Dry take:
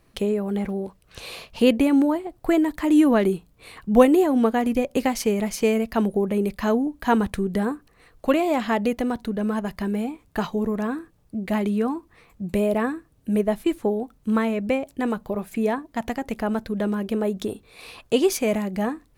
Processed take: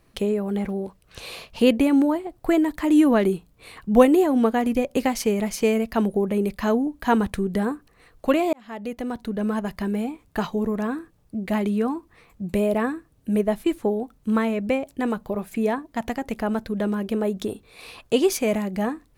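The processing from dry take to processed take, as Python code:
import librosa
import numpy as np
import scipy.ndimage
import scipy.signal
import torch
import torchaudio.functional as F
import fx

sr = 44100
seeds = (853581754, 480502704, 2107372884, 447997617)

y = fx.edit(x, sr, fx.fade_in_span(start_s=8.53, length_s=0.9), tone=tone)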